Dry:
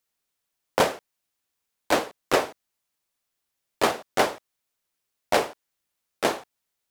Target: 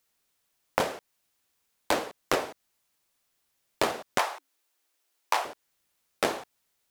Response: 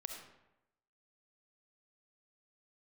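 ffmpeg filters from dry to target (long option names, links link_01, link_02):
-filter_complex "[0:a]asettb=1/sr,asplit=3[link_01][link_02][link_03];[link_01]atrim=end=4.184[link_04];[link_02]atrim=start=4.18:end=5.45,asetpts=PTS-STARTPTS,afade=type=in:duration=0.004:curve=qsin,afade=type=out:start_time=1.266:duration=0.004:curve=qsin,afreqshift=270[link_05];[link_03]atrim=start=5.446[link_06];[link_04][link_05]acrossfade=duration=0.004:curve1=hsin:curve2=qsin[link_07];[link_07][link_06]acrossfade=duration=0.004:curve1=qsin:curve2=hsin,acompressor=threshold=-28dB:ratio=16,volume=5.5dB"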